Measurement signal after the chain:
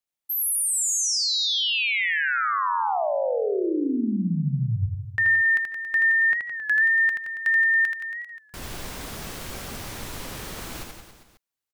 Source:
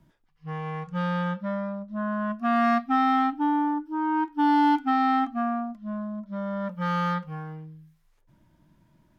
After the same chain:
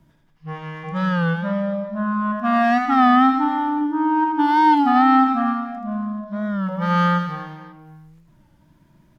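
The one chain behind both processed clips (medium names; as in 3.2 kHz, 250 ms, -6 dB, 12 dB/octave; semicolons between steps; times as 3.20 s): reverse bouncing-ball echo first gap 80 ms, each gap 1.15×, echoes 5; warped record 33 1/3 rpm, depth 100 cents; trim +4 dB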